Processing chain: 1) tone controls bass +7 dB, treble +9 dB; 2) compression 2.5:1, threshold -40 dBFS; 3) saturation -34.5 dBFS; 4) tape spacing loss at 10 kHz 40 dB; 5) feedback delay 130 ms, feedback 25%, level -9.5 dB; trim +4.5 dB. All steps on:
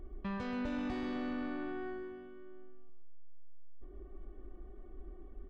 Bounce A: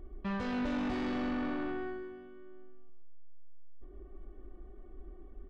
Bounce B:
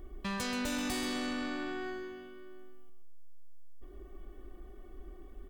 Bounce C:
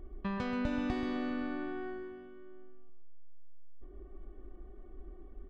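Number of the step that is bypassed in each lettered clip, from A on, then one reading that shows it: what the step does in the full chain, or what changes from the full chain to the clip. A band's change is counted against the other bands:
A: 2, mean gain reduction 3.5 dB; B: 4, 4 kHz band +12.5 dB; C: 3, distortion -12 dB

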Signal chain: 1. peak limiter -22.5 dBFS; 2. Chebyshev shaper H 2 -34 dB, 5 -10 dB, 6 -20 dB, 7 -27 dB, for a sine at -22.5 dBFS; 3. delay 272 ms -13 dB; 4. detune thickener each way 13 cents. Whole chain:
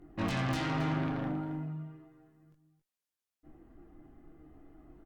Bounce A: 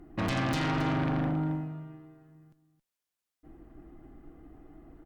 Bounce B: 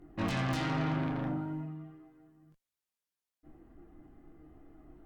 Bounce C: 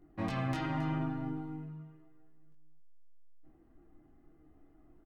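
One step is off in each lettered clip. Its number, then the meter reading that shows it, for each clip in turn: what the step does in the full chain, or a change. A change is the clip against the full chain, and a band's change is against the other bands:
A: 4, momentary loudness spread change +3 LU; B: 3, momentary loudness spread change +3 LU; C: 2, momentary loudness spread change +4 LU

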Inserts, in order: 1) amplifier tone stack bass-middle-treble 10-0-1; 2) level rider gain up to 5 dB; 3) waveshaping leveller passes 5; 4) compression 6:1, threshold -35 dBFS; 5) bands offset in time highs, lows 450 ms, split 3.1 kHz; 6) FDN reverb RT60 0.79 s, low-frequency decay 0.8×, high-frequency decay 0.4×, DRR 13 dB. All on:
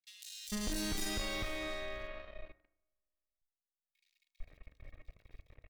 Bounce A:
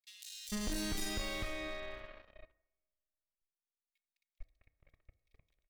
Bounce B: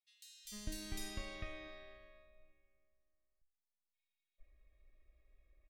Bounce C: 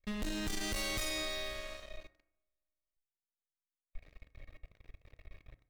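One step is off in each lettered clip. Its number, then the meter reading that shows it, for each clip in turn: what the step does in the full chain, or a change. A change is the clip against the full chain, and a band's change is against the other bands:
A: 2, momentary loudness spread change -9 LU; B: 3, loudness change -8.5 LU; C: 5, echo-to-direct 15.0 dB to -13.0 dB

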